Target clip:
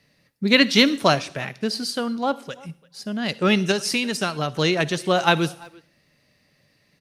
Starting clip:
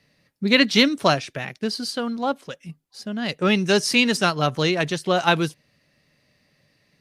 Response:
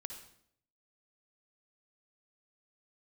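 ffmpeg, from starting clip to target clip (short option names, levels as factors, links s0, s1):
-filter_complex "[0:a]asettb=1/sr,asplit=3[s0][s1][s2];[s0]atrim=end=3.714[s3];[s1]atrim=start=3.71:end=4.55,asetpts=PTS-STARTPTS,afade=t=in:d=0.004:c=qsin,afade=t=out:st=0.836:d=0.004:c=qsin,acompressor=threshold=0.0891:ratio=6[s4];[s2]atrim=start=4.546[s5];[s3][s4]acrossfade=d=0.004:c1=hsin:c2=qsin[s6];[s6][s5]acrossfade=d=0.004:c1=qsin:c2=hsin,asplit=2[s7][s8];[s8]adelay=340,highpass=300,lowpass=3400,asoftclip=type=hard:threshold=0.266,volume=0.0708[s9];[s7][s9]amix=inputs=2:normalize=0,asplit=2[s10][s11];[1:a]atrim=start_sample=2205,asetrate=48510,aresample=44100,highshelf=f=6700:g=12[s12];[s11][s12]afir=irnorm=-1:irlink=0,volume=0.376[s13];[s10][s13]amix=inputs=2:normalize=0,volume=0.891"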